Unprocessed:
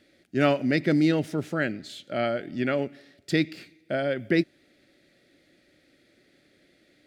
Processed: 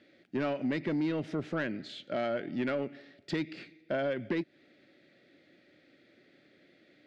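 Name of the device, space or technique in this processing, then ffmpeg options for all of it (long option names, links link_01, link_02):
AM radio: -af "highpass=120,lowpass=3700,acompressor=threshold=-26dB:ratio=6,asoftclip=type=tanh:threshold=-23.5dB"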